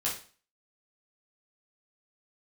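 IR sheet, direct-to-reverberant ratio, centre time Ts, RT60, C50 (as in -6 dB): -6.0 dB, 28 ms, 0.40 s, 6.5 dB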